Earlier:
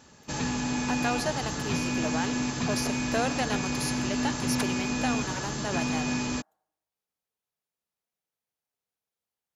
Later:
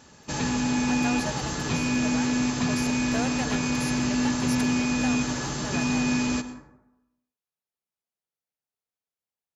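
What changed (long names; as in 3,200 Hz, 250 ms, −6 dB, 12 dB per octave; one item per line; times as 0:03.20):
speech −4.5 dB
background: send on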